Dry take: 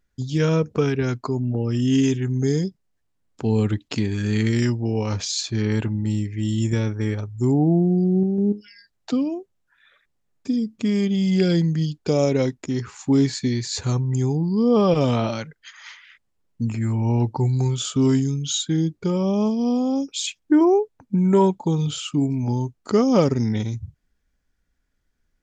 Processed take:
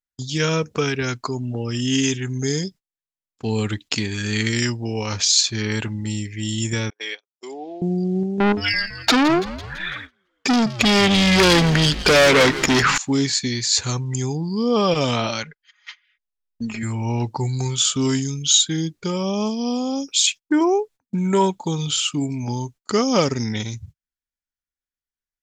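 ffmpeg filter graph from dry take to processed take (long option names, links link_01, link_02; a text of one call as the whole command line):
ffmpeg -i in.wav -filter_complex "[0:a]asettb=1/sr,asplit=3[link_01][link_02][link_03];[link_01]atrim=end=6.904[link_04];[link_02]atrim=start=6.9:end=7.82,asetpts=PTS-STARTPTS,afade=type=in:duration=0.004:curve=qsin,afade=type=out:start_time=0.916:duration=0.004:curve=qsin,agate=range=-32dB:threshold=-26dB:ratio=16:release=100:detection=peak,highpass=frequency=470:width=0.5412,highpass=frequency=470:width=1.3066,equalizer=frequency=600:width_type=q:width=4:gain=-6,equalizer=frequency=890:width_type=q:width=4:gain=-7,equalizer=frequency=1300:width_type=q:width=4:gain=-9,equalizer=frequency=2400:width_type=q:width=4:gain=3,equalizer=frequency=3400:width_type=q:width=4:gain=8,lowpass=frequency=5400:width=0.5412,lowpass=frequency=5400:width=1.3066[link_05];[link_03]atrim=start=7.816[link_06];[link_04][link_05]acrossfade=duration=0.004:curve1=hsin:curve2=qsin[link_07];[link_07][link_06]acrossfade=duration=0.004:curve1=qsin:curve2=hsin,asettb=1/sr,asplit=3[link_08][link_09][link_10];[link_08]atrim=end=8.404[link_11];[link_09]atrim=start=8.4:end=12.98,asetpts=PTS-STARTPTS,afade=type=in:duration=0.004:curve=qsin,afade=type=out:start_time=4.576:duration=0.004:curve=qsin,aemphasis=mode=reproduction:type=50kf,asplit=2[link_12][link_13];[link_13]highpass=frequency=720:poles=1,volume=31dB,asoftclip=type=tanh:threshold=-7.5dB[link_14];[link_12][link_14]amix=inputs=2:normalize=0,lowpass=frequency=3600:poles=1,volume=-6dB,asplit=8[link_15][link_16][link_17][link_18][link_19][link_20][link_21][link_22];[link_16]adelay=167,afreqshift=-110,volume=-14.5dB[link_23];[link_17]adelay=334,afreqshift=-220,volume=-18.5dB[link_24];[link_18]adelay=501,afreqshift=-330,volume=-22.5dB[link_25];[link_19]adelay=668,afreqshift=-440,volume=-26.5dB[link_26];[link_20]adelay=835,afreqshift=-550,volume=-30.6dB[link_27];[link_21]adelay=1002,afreqshift=-660,volume=-34.6dB[link_28];[link_22]adelay=1169,afreqshift=-770,volume=-38.6dB[link_29];[link_15][link_23][link_24][link_25][link_26][link_27][link_28][link_29]amix=inputs=8:normalize=0,atrim=end_sample=201978[link_30];[link_10]atrim=start=12.976[link_31];[link_11][link_30]acrossfade=duration=0.004:curve1=hsin:curve2=qsin[link_32];[link_32][link_31]acrossfade=duration=0.004:curve1=qsin:curve2=hsin,asettb=1/sr,asplit=3[link_33][link_34][link_35];[link_33]atrim=end=15.434[link_36];[link_34]atrim=start=15.43:end=16.83,asetpts=PTS-STARTPTS,afade=type=in:duration=0.004:curve=qsin,afade=type=out:start_time=1.396:duration=0.004:curve=qsin,asubboost=boost=11:cutoff=55,lowpass=4600,aecho=1:1:4.8:0.7,atrim=end_sample=61740[link_37];[link_35]atrim=start=16.826[link_38];[link_36][link_37]acrossfade=duration=0.004:curve1=hsin:curve2=qsin[link_39];[link_39][link_38]acrossfade=duration=0.004:curve1=qsin:curve2=hsin,agate=range=-25dB:threshold=-37dB:ratio=16:detection=peak,tiltshelf=frequency=1100:gain=-7,volume=3.5dB" out.wav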